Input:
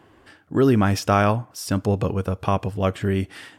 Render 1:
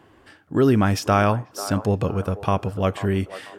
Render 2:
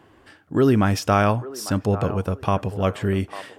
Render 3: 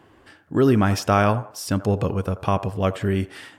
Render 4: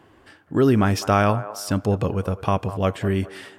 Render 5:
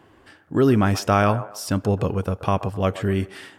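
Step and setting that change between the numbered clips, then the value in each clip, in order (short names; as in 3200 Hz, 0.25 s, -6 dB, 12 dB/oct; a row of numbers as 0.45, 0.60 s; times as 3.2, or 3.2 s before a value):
band-limited delay, time: 491, 848, 85, 204, 129 ms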